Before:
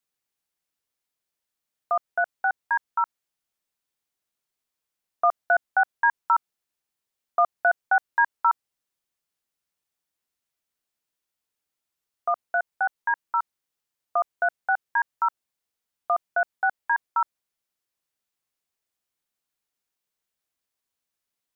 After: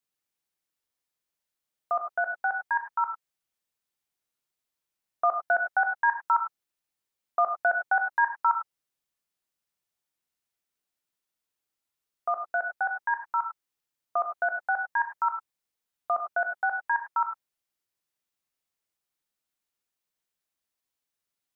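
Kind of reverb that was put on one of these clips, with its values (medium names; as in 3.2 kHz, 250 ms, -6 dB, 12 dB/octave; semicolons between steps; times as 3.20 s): gated-style reverb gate 120 ms rising, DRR 5.5 dB; trim -3 dB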